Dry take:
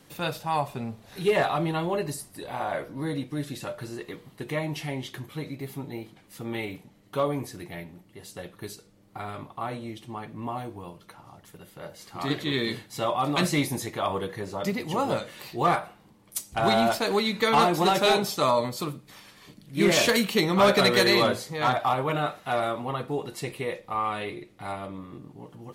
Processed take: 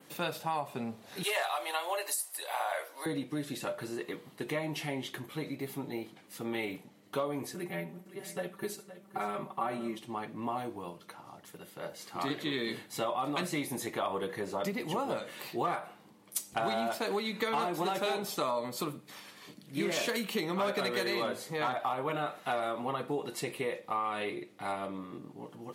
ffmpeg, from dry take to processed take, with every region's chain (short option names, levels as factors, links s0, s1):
-filter_complex "[0:a]asettb=1/sr,asplit=3[s0][s1][s2];[s0]atrim=end=1.234[s3];[s1]atrim=start=1.23:end=3.06,asetpts=PTS-STARTPTS,afade=t=in:d=0.004:c=qsin,afade=t=out:st=1.826:d=0.004:c=qsin,highpass=f=580:w=0.5412,highpass=f=580:w=1.3066,highshelf=f=3700:g=12[s4];[s2]atrim=start=3.056[s5];[s3][s4]acrossfade=d=0.004:c1=hsin:c2=qsin[s6];[s6][s5]acrossfade=d=0.004:c1=qsin:c2=hsin,asettb=1/sr,asplit=3[s7][s8][s9];[s7]atrim=end=7.544[s10];[s8]atrim=start=7.54:end=9.99,asetpts=PTS-STARTPTS,afade=t=in:d=0.004:c=qsin,afade=t=out:st=2.446:d=0.004:c=qsin,equalizer=f=4400:w=1:g=-6,aecho=1:1:5.2:0.88,atrim=end_sample=108045,aecho=1:1:516:0.188,atrim=end_sample=108045[s11];[s9]atrim=start=9.986[s12];[s10][s11]acrossfade=d=0.004:c1=hsin:c2=qsin[s13];[s13][s12]acrossfade=d=0.004:c1=qsin:c2=hsin,acompressor=threshold=0.0355:ratio=6,adynamicequalizer=threshold=0.00178:dfrequency=5200:dqfactor=1.4:tfrequency=5200:tqfactor=1.4:attack=5:release=100:ratio=0.375:range=2.5:mode=cutabove:tftype=bell,highpass=190"